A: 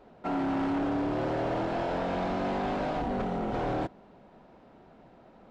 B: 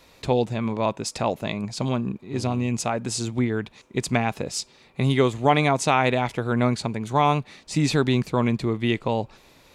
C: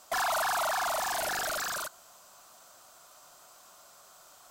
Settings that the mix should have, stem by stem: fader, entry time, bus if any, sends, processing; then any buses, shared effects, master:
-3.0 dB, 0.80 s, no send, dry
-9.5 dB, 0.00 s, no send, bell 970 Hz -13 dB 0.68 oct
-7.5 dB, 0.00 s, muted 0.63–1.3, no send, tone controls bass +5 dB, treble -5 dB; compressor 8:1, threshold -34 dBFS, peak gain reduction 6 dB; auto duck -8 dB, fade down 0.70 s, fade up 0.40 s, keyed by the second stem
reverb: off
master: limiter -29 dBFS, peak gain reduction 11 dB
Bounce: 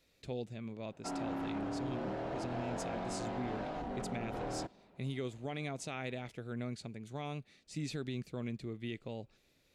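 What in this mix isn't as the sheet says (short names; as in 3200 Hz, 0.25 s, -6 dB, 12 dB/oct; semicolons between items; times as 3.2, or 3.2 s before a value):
stem A -3.0 dB -> -9.5 dB; stem B -9.5 dB -> -17.0 dB; stem C: muted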